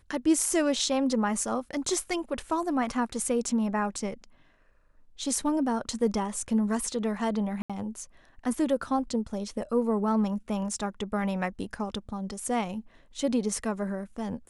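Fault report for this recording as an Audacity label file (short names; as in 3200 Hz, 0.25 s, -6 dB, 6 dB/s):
7.620000	7.700000	gap 76 ms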